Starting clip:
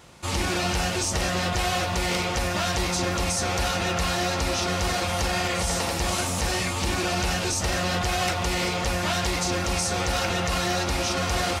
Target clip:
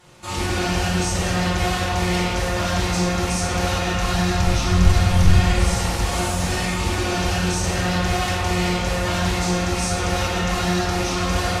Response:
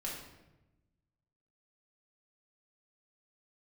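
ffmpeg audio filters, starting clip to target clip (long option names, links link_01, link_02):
-filter_complex "[0:a]asettb=1/sr,asplit=3[link_01][link_02][link_03];[link_01]atrim=end=3.754[link_04];[link_02]atrim=start=3.75:end=5.39,asetpts=PTS-STARTPTS,afade=type=in:duration=0.004:curve=qsin,afade=type=out:start_time=1.636:duration=0.004:curve=qsin,asubboost=boost=10:cutoff=180[link_05];[link_03]atrim=start=5.386[link_06];[link_04][link_05]acrossfade=duration=0.004:curve1=hsin:curve2=qsin[link_07];[link_07][link_06]acrossfade=duration=0.004:curve1=qsin:curve2=hsin,aeval=exprs='clip(val(0),-1,0.133)':channel_layout=same[link_08];[1:a]atrim=start_sample=2205,asetrate=29547,aresample=44100[link_09];[link_08][link_09]afir=irnorm=-1:irlink=0,volume=-1.5dB"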